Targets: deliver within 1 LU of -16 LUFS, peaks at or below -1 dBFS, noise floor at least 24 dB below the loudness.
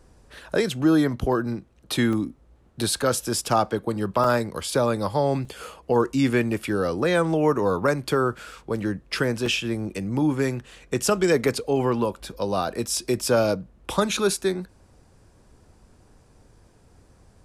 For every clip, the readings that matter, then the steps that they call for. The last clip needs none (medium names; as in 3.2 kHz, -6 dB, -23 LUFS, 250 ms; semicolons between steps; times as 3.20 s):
dropouts 4; longest dropout 3.1 ms; loudness -24.0 LUFS; peak level -9.5 dBFS; loudness target -16.0 LUFS
-> interpolate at 2.13/4.24/5.45/9.46 s, 3.1 ms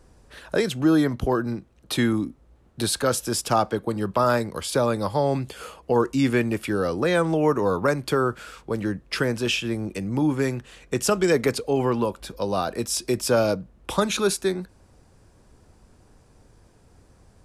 dropouts 0; loudness -24.0 LUFS; peak level -9.5 dBFS; loudness target -16.0 LUFS
-> trim +8 dB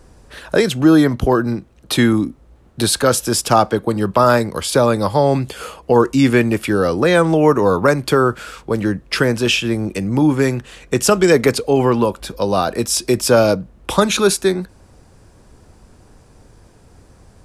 loudness -16.0 LUFS; peak level -1.5 dBFS; noise floor -49 dBFS